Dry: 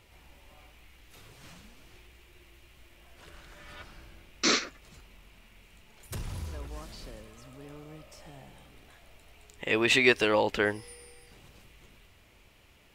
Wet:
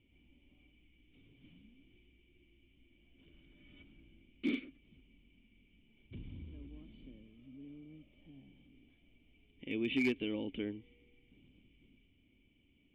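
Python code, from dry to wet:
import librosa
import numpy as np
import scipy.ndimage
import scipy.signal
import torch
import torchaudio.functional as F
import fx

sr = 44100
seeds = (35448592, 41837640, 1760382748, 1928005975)

y = fx.formant_cascade(x, sr, vowel='i')
y = np.clip(y, -10.0 ** (-27.0 / 20.0), 10.0 ** (-27.0 / 20.0))
y = y * librosa.db_to_amplitude(1.5)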